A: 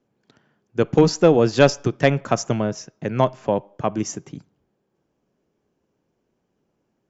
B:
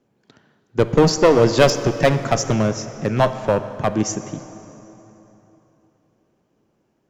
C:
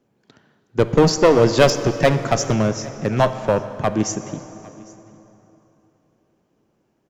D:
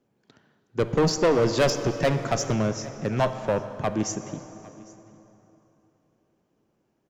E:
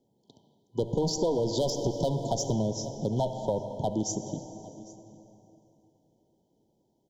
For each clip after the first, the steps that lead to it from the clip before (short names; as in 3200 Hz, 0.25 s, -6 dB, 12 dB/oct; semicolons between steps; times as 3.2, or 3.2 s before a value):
one-sided clip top -18.5 dBFS; plate-style reverb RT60 3.5 s, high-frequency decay 0.7×, DRR 10.5 dB; gain +4.5 dB
echo 0.805 s -23.5 dB
soft clip -8 dBFS, distortion -15 dB; gain -5 dB
FFT band-reject 1000–3000 Hz; compressor, threshold -24 dBFS, peak gain reduction 7.5 dB